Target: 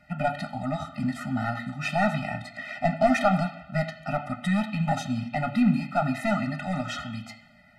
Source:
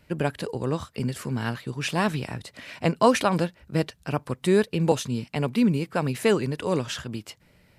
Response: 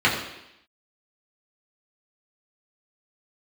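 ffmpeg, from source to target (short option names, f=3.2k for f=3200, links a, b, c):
-filter_complex "[0:a]asplit=2[a][b];[b]highpass=f=720:p=1,volume=18dB,asoftclip=type=tanh:threshold=-5.5dB[c];[a][c]amix=inputs=2:normalize=0,lowpass=f=1.2k:p=1,volume=-6dB,asplit=2[d][e];[1:a]atrim=start_sample=2205,lowshelf=f=490:g=-4.5[f];[e][f]afir=irnorm=-1:irlink=0,volume=-21.5dB[g];[d][g]amix=inputs=2:normalize=0,afftfilt=real='re*eq(mod(floor(b*sr/1024/300),2),0)':imag='im*eq(mod(floor(b*sr/1024/300),2),0)':win_size=1024:overlap=0.75,volume=-1.5dB"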